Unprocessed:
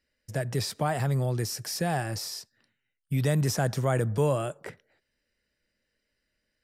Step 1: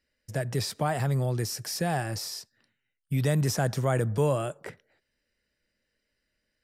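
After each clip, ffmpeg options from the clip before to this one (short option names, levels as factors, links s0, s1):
-af anull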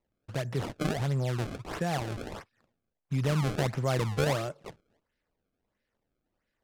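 -af "acrusher=samples=27:mix=1:aa=0.000001:lfo=1:lforange=43.2:lforate=1.5,adynamicsmooth=sensitivity=6.5:basefreq=7400,volume=0.75"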